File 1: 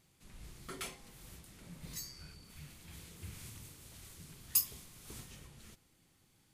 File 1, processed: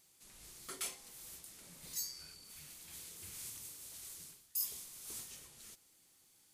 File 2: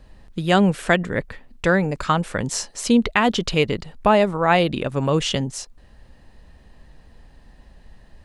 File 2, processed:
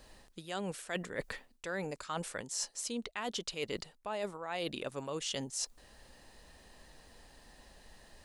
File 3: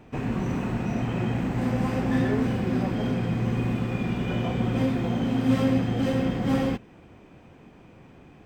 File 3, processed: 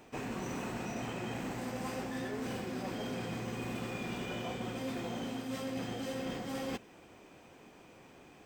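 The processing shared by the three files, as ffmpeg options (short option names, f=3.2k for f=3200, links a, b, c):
-af "bass=f=250:g=-11,treble=f=4k:g=10,areverse,acompressor=threshold=-32dB:ratio=16,areverse,volume=-2.5dB"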